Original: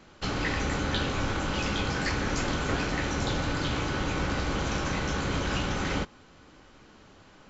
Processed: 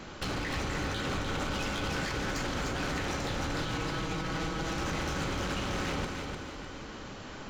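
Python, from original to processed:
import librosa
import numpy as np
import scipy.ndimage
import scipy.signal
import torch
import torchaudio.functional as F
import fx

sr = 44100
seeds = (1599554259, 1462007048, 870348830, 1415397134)

y = fx.comb(x, sr, ms=6.2, depth=0.86, at=(3.62, 4.77))
y = fx.over_compress(y, sr, threshold_db=-35.0, ratio=-1.0)
y = np.clip(10.0 ** (33.5 / 20.0) * y, -1.0, 1.0) / 10.0 ** (33.5 / 20.0)
y = fx.echo_feedback(y, sr, ms=301, feedback_pct=40, wet_db=-5.0)
y = F.gain(torch.from_numpy(y), 3.0).numpy()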